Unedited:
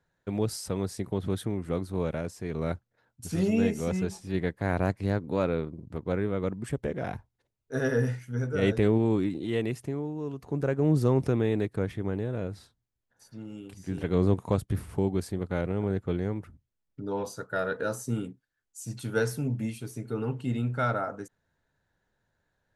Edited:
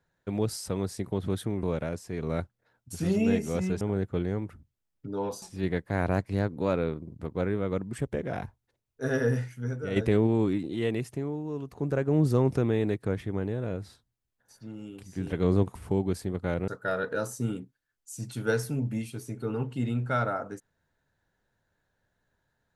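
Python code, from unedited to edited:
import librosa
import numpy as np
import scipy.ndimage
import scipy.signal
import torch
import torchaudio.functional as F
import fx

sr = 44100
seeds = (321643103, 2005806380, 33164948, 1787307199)

y = fx.edit(x, sr, fx.cut(start_s=1.63, length_s=0.32),
    fx.fade_out_to(start_s=8.24, length_s=0.43, floor_db=-8.0),
    fx.cut(start_s=14.46, length_s=0.36),
    fx.move(start_s=15.75, length_s=1.61, to_s=4.13), tone=tone)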